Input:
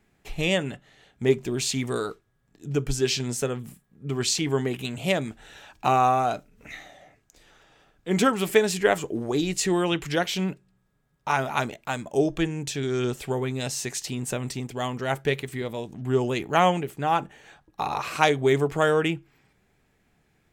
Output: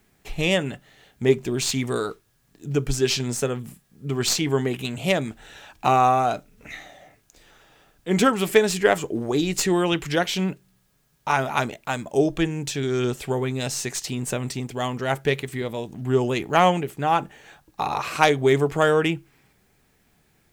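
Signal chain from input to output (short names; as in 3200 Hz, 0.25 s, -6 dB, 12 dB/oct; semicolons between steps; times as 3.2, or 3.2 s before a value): tracing distortion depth 0.022 ms; requantised 12-bit, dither triangular; gain +2.5 dB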